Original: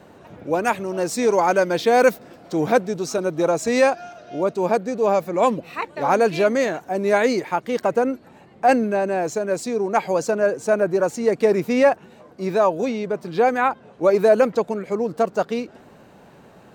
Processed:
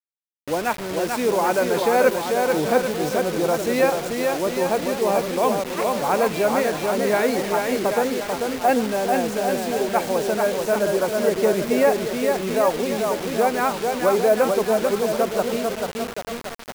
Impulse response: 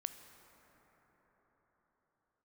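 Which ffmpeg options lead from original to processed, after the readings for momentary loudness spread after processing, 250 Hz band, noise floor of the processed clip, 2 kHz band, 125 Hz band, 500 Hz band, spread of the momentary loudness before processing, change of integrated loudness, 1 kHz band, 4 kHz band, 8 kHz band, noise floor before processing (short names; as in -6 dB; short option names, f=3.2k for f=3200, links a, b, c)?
6 LU, -0.5 dB, -34 dBFS, 0.0 dB, -0.5 dB, -0.5 dB, 8 LU, -1.0 dB, -0.5 dB, +5.0 dB, +3.5 dB, -49 dBFS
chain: -filter_complex "[0:a]equalizer=f=7k:w=1.5:g=-8,aecho=1:1:440|792|1074|1299|1479:0.631|0.398|0.251|0.158|0.1,agate=range=-33dB:threshold=-35dB:ratio=3:detection=peak,asplit=2[a][b];[1:a]atrim=start_sample=2205,atrim=end_sample=3969,asetrate=25137,aresample=44100[c];[b][c]afir=irnorm=-1:irlink=0,volume=-2dB[d];[a][d]amix=inputs=2:normalize=0,acrusher=bits=3:mix=0:aa=0.000001,volume=-8dB"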